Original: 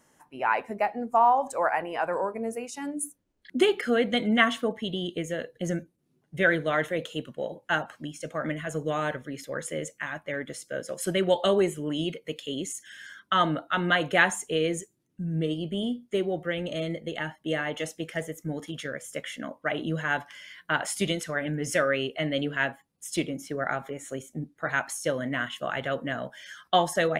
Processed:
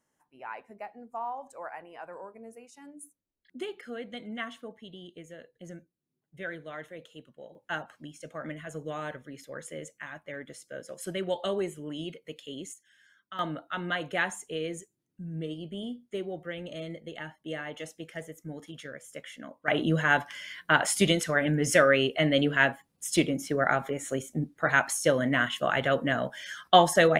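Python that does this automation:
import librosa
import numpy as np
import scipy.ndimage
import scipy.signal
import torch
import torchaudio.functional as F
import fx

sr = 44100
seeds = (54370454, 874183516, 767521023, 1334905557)

y = fx.gain(x, sr, db=fx.steps((0.0, -15.0), (7.55, -7.5), (12.74, -17.5), (13.39, -7.5), (19.68, 4.0)))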